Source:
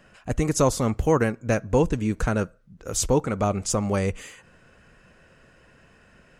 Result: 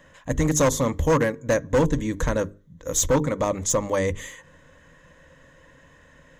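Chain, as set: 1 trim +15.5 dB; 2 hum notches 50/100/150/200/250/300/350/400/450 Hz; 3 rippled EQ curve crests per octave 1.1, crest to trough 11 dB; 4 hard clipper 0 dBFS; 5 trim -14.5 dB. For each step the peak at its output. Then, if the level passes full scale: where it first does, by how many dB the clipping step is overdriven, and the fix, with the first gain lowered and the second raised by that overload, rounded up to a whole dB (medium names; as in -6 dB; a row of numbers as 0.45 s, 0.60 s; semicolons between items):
+7.5 dBFS, +7.0 dBFS, +10.0 dBFS, 0.0 dBFS, -14.5 dBFS; step 1, 10.0 dB; step 1 +5.5 dB, step 5 -4.5 dB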